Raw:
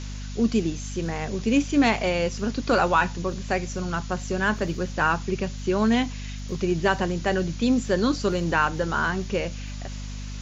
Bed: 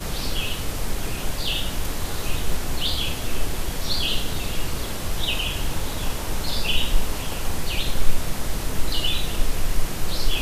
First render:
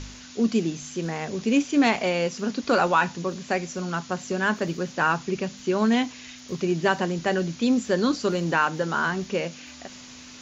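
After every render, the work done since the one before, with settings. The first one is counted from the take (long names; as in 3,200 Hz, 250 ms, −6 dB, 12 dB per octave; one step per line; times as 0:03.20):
hum removal 50 Hz, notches 4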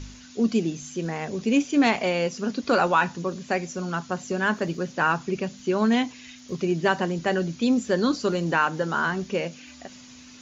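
broadband denoise 6 dB, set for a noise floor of −44 dBFS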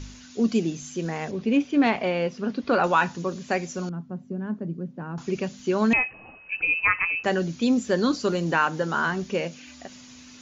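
0:01.31–0:02.84: high-frequency loss of the air 200 metres
0:03.89–0:05.18: resonant band-pass 180 Hz, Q 1.4
0:05.93–0:07.24: voice inversion scrambler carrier 2,800 Hz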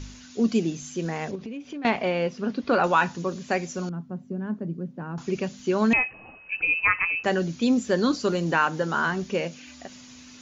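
0:01.35–0:01.85: downward compressor 12 to 1, threshold −32 dBFS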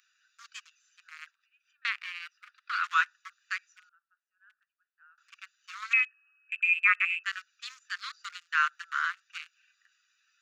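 adaptive Wiener filter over 41 samples
Butterworth high-pass 1,200 Hz 72 dB per octave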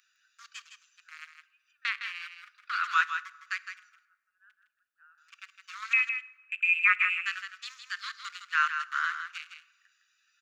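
single-tap delay 160 ms −8 dB
dense smooth reverb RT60 1.2 s, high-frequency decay 0.7×, DRR 17.5 dB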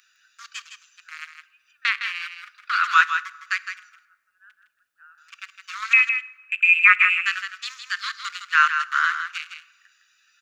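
level +9 dB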